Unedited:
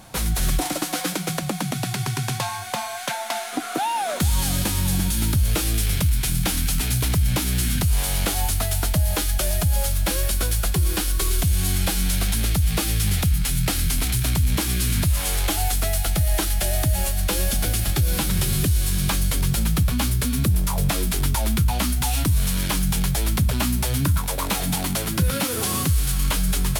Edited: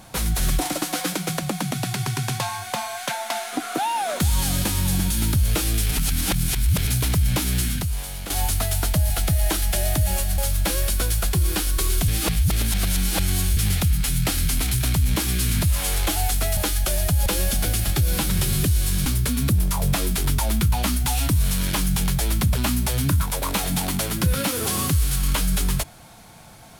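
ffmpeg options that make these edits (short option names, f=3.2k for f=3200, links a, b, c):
-filter_complex "[0:a]asplit=11[a][b][c][d][e][f][g][h][i][j][k];[a]atrim=end=5.912[l];[b]atrim=start=5.908:end=6.872,asetpts=PTS-STARTPTS,areverse[m];[c]atrim=start=6.868:end=8.3,asetpts=PTS-STARTPTS,afade=t=out:st=0.722:d=0.71:c=qua:silence=0.298538[n];[d]atrim=start=8.3:end=9.102,asetpts=PTS-STARTPTS,afade=t=in:d=0.004:c=hsin:silence=0.298538[o];[e]atrim=start=15.978:end=17.262[p];[f]atrim=start=9.788:end=11.492[q];[g]atrim=start=11.488:end=12.982,asetpts=PTS-STARTPTS,areverse[r];[h]atrim=start=12.978:end=15.982[s];[i]atrim=start=9.098:end=9.792[t];[j]atrim=start=17.258:end=19.062[u];[k]atrim=start=20.018[v];[l][m]acrossfade=d=0.004:c1=hsin:c2=hsin[w];[n][o]concat=n=2:v=0:a=1[x];[w][x]acrossfade=d=0.004:c1=hsin:c2=hsin[y];[y][p]acrossfade=d=0.004:c1=hsin:c2=hsin[z];[z][q]acrossfade=d=0.004:c1=hsin:c2=hsin[aa];[aa][r]acrossfade=d=0.004:c1=hsin:c2=hsin[ab];[ab][s]acrossfade=d=0.004:c1=hsin:c2=hsin[ac];[ac][t]acrossfade=d=0.004:c1=hsin:c2=hsin[ad];[ad][u]acrossfade=d=0.004:c1=hsin:c2=hsin[ae];[ae][v]acrossfade=d=0.004:c1=hsin:c2=hsin"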